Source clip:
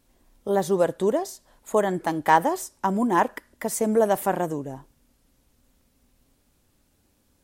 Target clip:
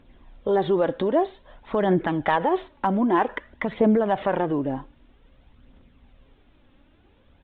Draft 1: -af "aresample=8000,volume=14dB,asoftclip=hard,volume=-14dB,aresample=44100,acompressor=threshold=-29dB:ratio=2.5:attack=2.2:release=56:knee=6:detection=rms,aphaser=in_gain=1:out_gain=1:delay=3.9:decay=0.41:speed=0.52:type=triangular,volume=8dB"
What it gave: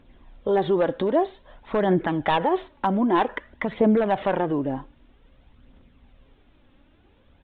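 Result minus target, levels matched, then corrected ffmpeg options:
overloaded stage: distortion +13 dB
-af "aresample=8000,volume=8dB,asoftclip=hard,volume=-8dB,aresample=44100,acompressor=threshold=-29dB:ratio=2.5:attack=2.2:release=56:knee=6:detection=rms,aphaser=in_gain=1:out_gain=1:delay=3.9:decay=0.41:speed=0.52:type=triangular,volume=8dB"

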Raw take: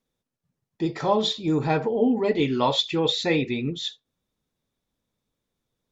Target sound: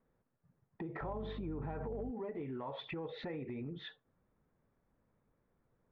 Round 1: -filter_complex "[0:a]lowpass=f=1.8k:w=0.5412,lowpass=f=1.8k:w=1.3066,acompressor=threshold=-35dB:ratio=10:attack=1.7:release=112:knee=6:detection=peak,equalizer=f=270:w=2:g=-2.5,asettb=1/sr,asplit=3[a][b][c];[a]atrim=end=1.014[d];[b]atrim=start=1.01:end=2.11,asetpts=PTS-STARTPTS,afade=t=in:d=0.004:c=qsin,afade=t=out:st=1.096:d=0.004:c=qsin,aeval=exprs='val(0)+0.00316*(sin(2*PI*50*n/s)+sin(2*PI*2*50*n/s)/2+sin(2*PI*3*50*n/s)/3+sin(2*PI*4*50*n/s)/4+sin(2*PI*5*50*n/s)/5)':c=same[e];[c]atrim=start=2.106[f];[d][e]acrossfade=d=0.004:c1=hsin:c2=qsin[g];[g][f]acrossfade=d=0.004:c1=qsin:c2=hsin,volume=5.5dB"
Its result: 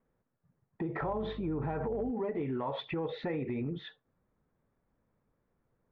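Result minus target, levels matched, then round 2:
compressor: peak gain reduction -7.5 dB
-filter_complex "[0:a]lowpass=f=1.8k:w=0.5412,lowpass=f=1.8k:w=1.3066,acompressor=threshold=-43.5dB:ratio=10:attack=1.7:release=112:knee=6:detection=peak,equalizer=f=270:w=2:g=-2.5,asettb=1/sr,asplit=3[a][b][c];[a]atrim=end=1.014[d];[b]atrim=start=1.01:end=2.11,asetpts=PTS-STARTPTS,afade=t=in:d=0.004:c=qsin,afade=t=out:st=1.096:d=0.004:c=qsin,aeval=exprs='val(0)+0.00316*(sin(2*PI*50*n/s)+sin(2*PI*2*50*n/s)/2+sin(2*PI*3*50*n/s)/3+sin(2*PI*4*50*n/s)/4+sin(2*PI*5*50*n/s)/5)':c=same[e];[c]atrim=start=2.106[f];[d][e]acrossfade=d=0.004:c1=hsin:c2=qsin[g];[g][f]acrossfade=d=0.004:c1=qsin:c2=hsin,volume=5.5dB"

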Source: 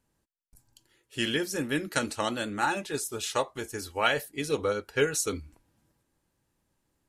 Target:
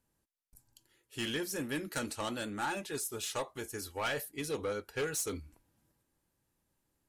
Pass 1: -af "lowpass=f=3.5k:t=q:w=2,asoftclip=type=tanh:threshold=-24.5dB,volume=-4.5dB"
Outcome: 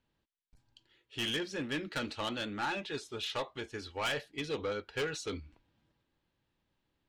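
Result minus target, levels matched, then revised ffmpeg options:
8000 Hz band -9.5 dB
-af "lowpass=f=13k:t=q:w=2,asoftclip=type=tanh:threshold=-24.5dB,volume=-4.5dB"

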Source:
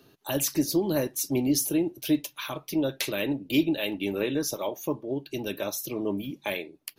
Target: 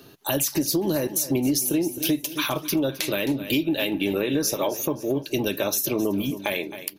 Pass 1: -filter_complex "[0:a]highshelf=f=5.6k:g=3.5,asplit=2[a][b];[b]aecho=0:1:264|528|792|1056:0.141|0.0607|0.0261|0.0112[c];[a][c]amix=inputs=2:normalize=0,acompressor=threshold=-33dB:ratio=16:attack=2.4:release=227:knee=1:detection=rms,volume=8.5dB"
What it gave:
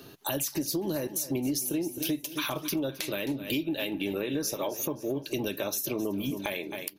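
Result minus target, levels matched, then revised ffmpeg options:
compressor: peak gain reduction +7 dB
-filter_complex "[0:a]highshelf=f=5.6k:g=3.5,asplit=2[a][b];[b]aecho=0:1:264|528|792|1056:0.141|0.0607|0.0261|0.0112[c];[a][c]amix=inputs=2:normalize=0,acompressor=threshold=-25.5dB:ratio=16:attack=2.4:release=227:knee=1:detection=rms,volume=8.5dB"

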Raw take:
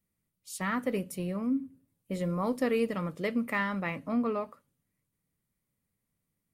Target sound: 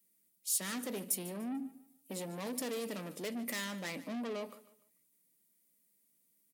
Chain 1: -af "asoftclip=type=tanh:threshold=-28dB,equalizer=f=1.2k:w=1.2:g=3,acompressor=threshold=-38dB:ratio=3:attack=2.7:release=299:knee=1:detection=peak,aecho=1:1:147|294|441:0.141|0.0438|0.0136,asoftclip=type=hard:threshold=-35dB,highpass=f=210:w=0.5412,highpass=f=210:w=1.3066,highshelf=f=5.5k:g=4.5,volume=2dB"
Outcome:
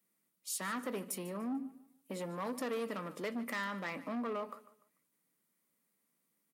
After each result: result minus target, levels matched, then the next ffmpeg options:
1000 Hz band +7.0 dB; 8000 Hz band -6.0 dB; soft clip: distortion -5 dB
-af "asoftclip=type=tanh:threshold=-28dB,equalizer=f=1.2k:w=1.2:g=-7.5,acompressor=threshold=-38dB:ratio=3:attack=2.7:release=299:knee=1:detection=peak,aecho=1:1:147|294|441:0.141|0.0438|0.0136,asoftclip=type=hard:threshold=-35dB,highpass=f=210:w=0.5412,highpass=f=210:w=1.3066,highshelf=f=5.5k:g=4.5,volume=2dB"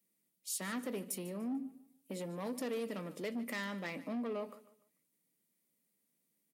8000 Hz band -5.0 dB; soft clip: distortion -5 dB
-af "asoftclip=type=tanh:threshold=-28dB,equalizer=f=1.2k:w=1.2:g=-7.5,acompressor=threshold=-38dB:ratio=3:attack=2.7:release=299:knee=1:detection=peak,aecho=1:1:147|294|441:0.141|0.0438|0.0136,asoftclip=type=hard:threshold=-35dB,highpass=f=210:w=0.5412,highpass=f=210:w=1.3066,highshelf=f=5.5k:g=13.5,volume=2dB"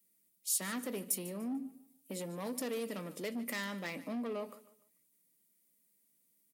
soft clip: distortion -5 dB
-af "asoftclip=type=tanh:threshold=-35dB,equalizer=f=1.2k:w=1.2:g=-7.5,acompressor=threshold=-38dB:ratio=3:attack=2.7:release=299:knee=1:detection=peak,aecho=1:1:147|294|441:0.141|0.0438|0.0136,asoftclip=type=hard:threshold=-35dB,highpass=f=210:w=0.5412,highpass=f=210:w=1.3066,highshelf=f=5.5k:g=13.5,volume=2dB"

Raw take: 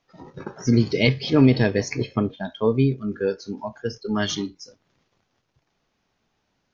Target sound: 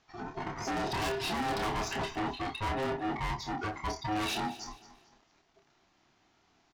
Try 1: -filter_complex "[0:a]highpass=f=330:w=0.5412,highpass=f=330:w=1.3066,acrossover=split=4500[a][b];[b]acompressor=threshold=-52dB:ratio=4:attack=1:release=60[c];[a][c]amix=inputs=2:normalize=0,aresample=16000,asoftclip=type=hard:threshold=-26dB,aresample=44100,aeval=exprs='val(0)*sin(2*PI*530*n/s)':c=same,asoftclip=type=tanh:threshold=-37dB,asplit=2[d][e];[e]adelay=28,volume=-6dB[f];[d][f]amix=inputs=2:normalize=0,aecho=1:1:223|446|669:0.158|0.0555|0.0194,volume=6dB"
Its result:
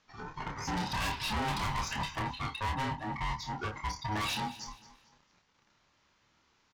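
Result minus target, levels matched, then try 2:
125 Hz band +3.5 dB
-filter_complex "[0:a]highpass=f=120:w=0.5412,highpass=f=120:w=1.3066,acrossover=split=4500[a][b];[b]acompressor=threshold=-52dB:ratio=4:attack=1:release=60[c];[a][c]amix=inputs=2:normalize=0,aresample=16000,asoftclip=type=hard:threshold=-26dB,aresample=44100,aeval=exprs='val(0)*sin(2*PI*530*n/s)':c=same,asoftclip=type=tanh:threshold=-37dB,asplit=2[d][e];[e]adelay=28,volume=-6dB[f];[d][f]amix=inputs=2:normalize=0,aecho=1:1:223|446|669:0.158|0.0555|0.0194,volume=6dB"

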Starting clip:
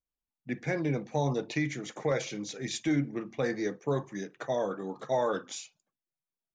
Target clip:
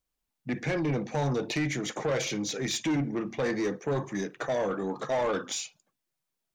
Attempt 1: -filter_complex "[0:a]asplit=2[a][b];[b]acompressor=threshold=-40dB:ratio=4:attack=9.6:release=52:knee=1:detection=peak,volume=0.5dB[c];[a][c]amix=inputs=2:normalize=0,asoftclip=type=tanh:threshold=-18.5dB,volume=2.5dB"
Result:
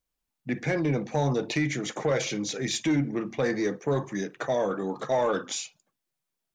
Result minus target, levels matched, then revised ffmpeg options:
soft clip: distortion -9 dB
-filter_complex "[0:a]asplit=2[a][b];[b]acompressor=threshold=-40dB:ratio=4:attack=9.6:release=52:knee=1:detection=peak,volume=0.5dB[c];[a][c]amix=inputs=2:normalize=0,asoftclip=type=tanh:threshold=-25.5dB,volume=2.5dB"

